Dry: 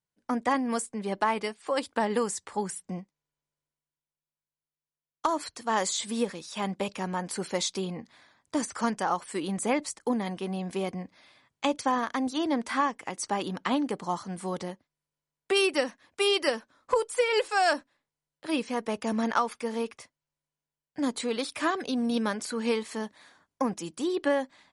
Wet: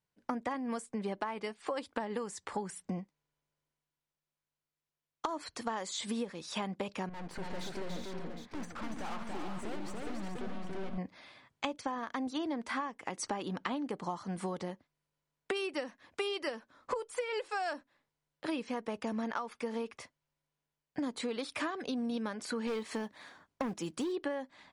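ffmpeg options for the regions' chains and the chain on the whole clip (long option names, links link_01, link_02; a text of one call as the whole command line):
ffmpeg -i in.wav -filter_complex "[0:a]asettb=1/sr,asplit=3[link_01][link_02][link_03];[link_01]atrim=end=7.094[link_04];[link_02]atrim=start=7.09:end=10.98,asetpts=PTS-STARTPTS,afade=type=in:duration=0.004:curve=qsin,afade=type=out:start_time=3.886:duration=0.004:curve=qsin,lowpass=frequency=1700:poles=1,aeval=exprs='(tanh(141*val(0)+0.7)-tanh(0.7))/141':channel_layout=same,aecho=1:1:68|285|366|426|761:0.15|0.668|0.447|0.398|0.299,atrim=end_sample=171549[link_05];[link_03]atrim=start=10.976[link_06];[link_04][link_05]acrossfade=duration=0.004:curve1=hsin:curve2=qsin[link_07];[link_07][link_06]acrossfade=duration=0.004:curve1=qsin:curve2=hsin,asettb=1/sr,asplit=3[link_08][link_09][link_10];[link_08]atrim=end=22.674[link_11];[link_09]atrim=start=22.67:end=24.12,asetpts=PTS-STARTPTS,afade=type=in:duration=0.004:curve=qsin,afade=type=out:start_time=1.446:duration=0.004:curve=qsin,asoftclip=type=hard:threshold=-25.5dB,acrusher=bits=6:mode=log:mix=0:aa=0.000001[link_12];[link_10]atrim=start=24.116[link_13];[link_11][link_12]acrossfade=duration=0.004:curve1=hsin:curve2=qsin[link_14];[link_14][link_13]acrossfade=duration=0.004:curve1=qsin:curve2=hsin,highshelf=frequency=6600:gain=-11,acompressor=threshold=-37dB:ratio=10,volume=4dB" out.wav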